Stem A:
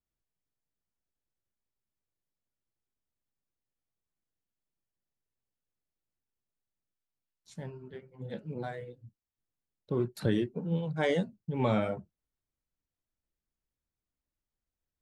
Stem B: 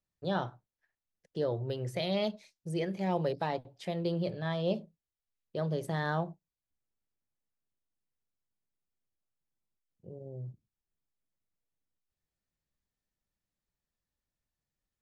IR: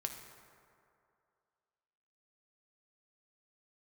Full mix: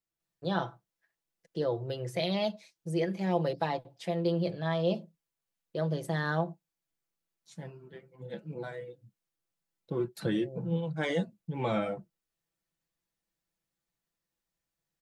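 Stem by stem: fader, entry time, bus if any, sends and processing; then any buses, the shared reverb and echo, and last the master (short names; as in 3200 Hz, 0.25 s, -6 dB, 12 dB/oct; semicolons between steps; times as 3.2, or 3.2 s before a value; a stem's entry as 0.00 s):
-1.5 dB, 0.00 s, no send, dry
+1.0 dB, 0.20 s, no send, dry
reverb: off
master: low shelf 90 Hz -11.5 dB; comb 6 ms, depth 57%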